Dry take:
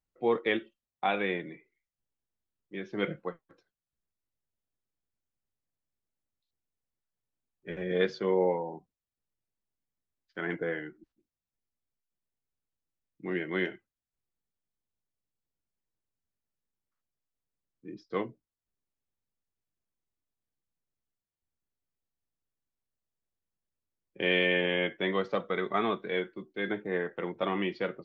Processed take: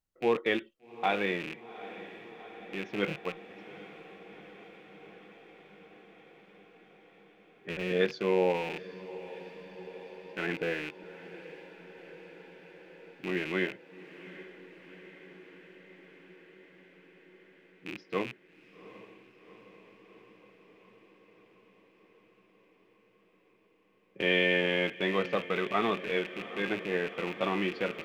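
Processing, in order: rattling part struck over -49 dBFS, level -28 dBFS; diffused feedback echo 0.779 s, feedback 75%, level -15.5 dB

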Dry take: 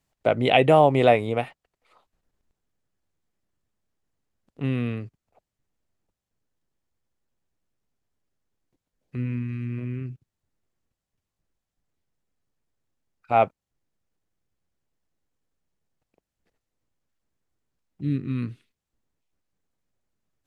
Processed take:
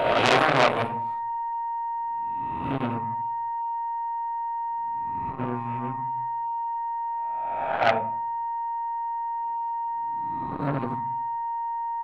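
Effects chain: spectral swells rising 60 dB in 1.63 s; tempo 1.7×; on a send at -4 dB: reverb RT60 0.45 s, pre-delay 3 ms; on the sum: whine 930 Hz -26 dBFS; core saturation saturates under 3300 Hz

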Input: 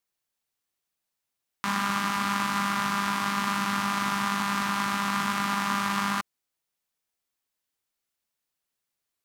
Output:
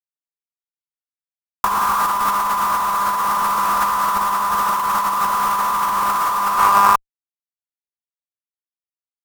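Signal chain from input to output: on a send: feedback echo 0.374 s, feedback 19%, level -13 dB; on the sum: digital reverb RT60 1 s, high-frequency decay 0.8×, pre-delay 10 ms, DRR 15 dB; sample leveller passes 3; band shelf 1700 Hz +9.5 dB; fuzz box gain 61 dB, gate -58 dBFS; ten-band EQ 125 Hz -6 dB, 250 Hz -4 dB, 1000 Hz +12 dB, 2000 Hz -8 dB, 4000 Hz -6 dB, 8000 Hz -3 dB, 16000 Hz +5 dB; negative-ratio compressor -12 dBFS, ratio -0.5; gain -4 dB

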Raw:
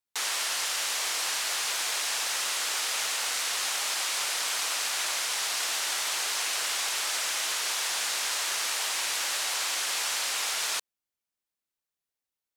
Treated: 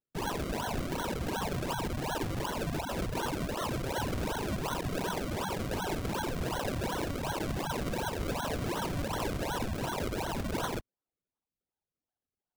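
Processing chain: sine-wave speech; decimation with a swept rate 35×, swing 100% 2.7 Hz; gain -3.5 dB

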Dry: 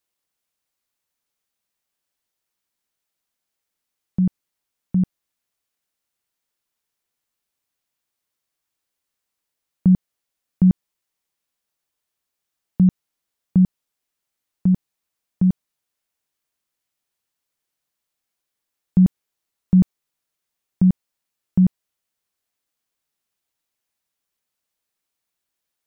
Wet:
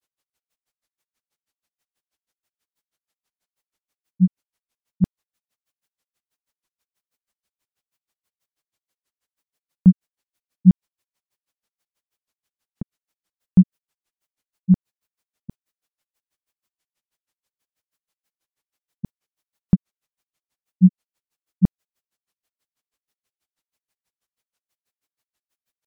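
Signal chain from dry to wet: grains 88 ms, grains 6.2/s, spray 19 ms, pitch spread up and down by 0 st; gain +5.5 dB

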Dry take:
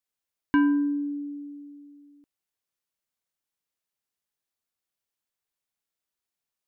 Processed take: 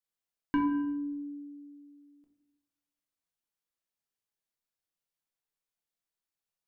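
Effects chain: shoebox room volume 190 m³, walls mixed, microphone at 0.7 m; gain -6.5 dB

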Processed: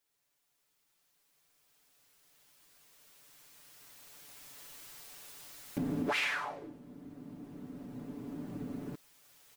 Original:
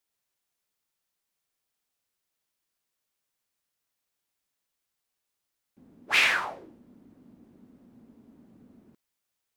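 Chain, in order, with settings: recorder AGC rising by 6.4 dB/s; comb 6.9 ms, depth 69%; compressor 2.5:1, threshold -36 dBFS, peak gain reduction 13 dB

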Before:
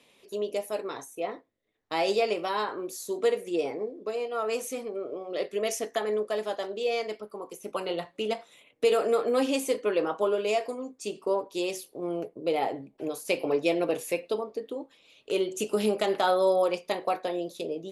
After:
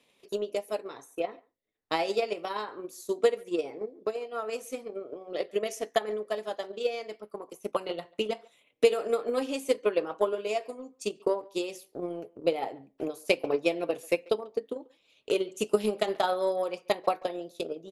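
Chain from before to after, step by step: transient shaper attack +11 dB, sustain -2 dB; speakerphone echo 0.14 s, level -24 dB; gain -6.5 dB

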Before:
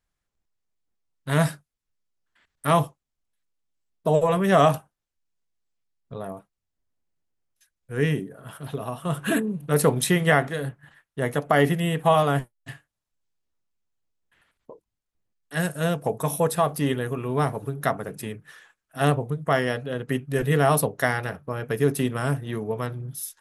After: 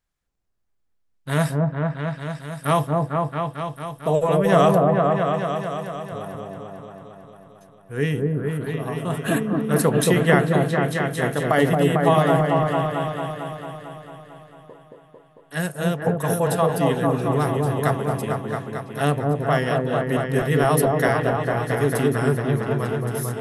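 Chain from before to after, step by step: 8.36–8.8 notch 5200 Hz, Q 5; on a send: repeats that get brighter 0.224 s, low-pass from 750 Hz, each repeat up 1 oct, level 0 dB

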